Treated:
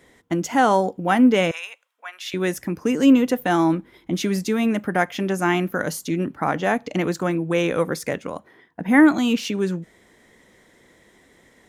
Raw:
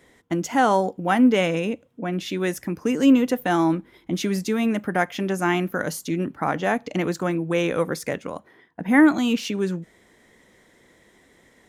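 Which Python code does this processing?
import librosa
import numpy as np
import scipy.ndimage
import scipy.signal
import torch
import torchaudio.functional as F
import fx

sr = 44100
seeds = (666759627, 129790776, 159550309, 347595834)

y = fx.highpass(x, sr, hz=1000.0, slope=24, at=(1.51, 2.34))
y = F.gain(torch.from_numpy(y), 1.5).numpy()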